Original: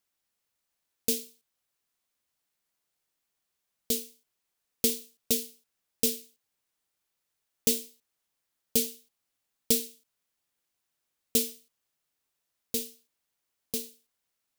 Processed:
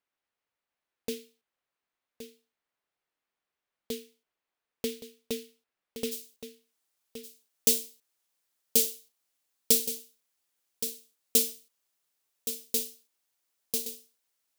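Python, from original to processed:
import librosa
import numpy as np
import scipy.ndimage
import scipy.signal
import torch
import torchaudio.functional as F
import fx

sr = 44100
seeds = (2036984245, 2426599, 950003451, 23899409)

y = fx.bass_treble(x, sr, bass_db=-7, treble_db=fx.steps((0.0, -15.0), (6.11, 3.0)))
y = y + 10.0 ** (-10.5 / 20.0) * np.pad(y, (int(1120 * sr / 1000.0), 0))[:len(y)]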